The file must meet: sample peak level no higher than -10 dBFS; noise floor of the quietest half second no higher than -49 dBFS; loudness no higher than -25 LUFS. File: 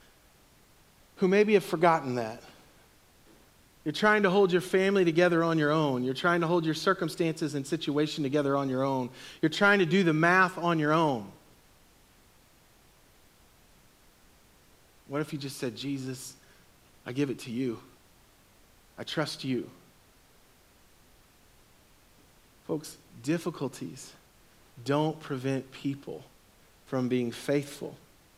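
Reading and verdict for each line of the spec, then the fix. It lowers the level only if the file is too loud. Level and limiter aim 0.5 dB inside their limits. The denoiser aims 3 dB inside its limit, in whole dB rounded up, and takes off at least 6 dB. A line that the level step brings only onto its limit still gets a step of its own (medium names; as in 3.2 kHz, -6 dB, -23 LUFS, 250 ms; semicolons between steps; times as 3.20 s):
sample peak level -9.5 dBFS: fail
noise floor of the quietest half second -60 dBFS: pass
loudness -28.0 LUFS: pass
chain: peak limiter -10.5 dBFS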